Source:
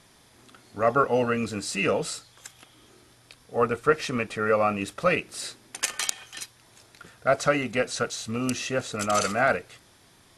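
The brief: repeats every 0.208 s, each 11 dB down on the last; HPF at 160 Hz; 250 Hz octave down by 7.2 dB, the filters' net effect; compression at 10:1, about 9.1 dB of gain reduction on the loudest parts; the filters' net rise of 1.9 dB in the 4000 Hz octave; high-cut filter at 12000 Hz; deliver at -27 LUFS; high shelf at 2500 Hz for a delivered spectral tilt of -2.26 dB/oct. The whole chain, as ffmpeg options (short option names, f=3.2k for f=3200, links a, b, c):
-af "highpass=160,lowpass=12k,equalizer=f=250:t=o:g=-7.5,highshelf=f=2.5k:g=-4,equalizer=f=4k:t=o:g=6,acompressor=threshold=-26dB:ratio=10,aecho=1:1:208|416|624:0.282|0.0789|0.0221,volume=5dB"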